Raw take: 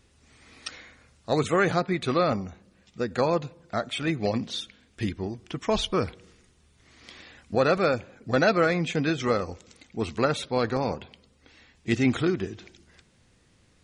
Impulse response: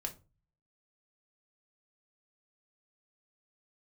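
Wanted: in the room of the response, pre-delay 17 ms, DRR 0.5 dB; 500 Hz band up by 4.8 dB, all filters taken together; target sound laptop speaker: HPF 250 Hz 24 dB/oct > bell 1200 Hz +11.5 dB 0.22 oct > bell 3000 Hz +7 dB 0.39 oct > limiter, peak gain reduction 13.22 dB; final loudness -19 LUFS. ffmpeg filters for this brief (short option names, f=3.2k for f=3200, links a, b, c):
-filter_complex "[0:a]equalizer=f=500:t=o:g=5.5,asplit=2[a][b];[1:a]atrim=start_sample=2205,adelay=17[c];[b][c]afir=irnorm=-1:irlink=0,volume=0dB[d];[a][d]amix=inputs=2:normalize=0,highpass=f=250:w=0.5412,highpass=f=250:w=1.3066,equalizer=f=1.2k:t=o:w=0.22:g=11.5,equalizer=f=3k:t=o:w=0.39:g=7,volume=7.5dB,alimiter=limit=-8dB:level=0:latency=1"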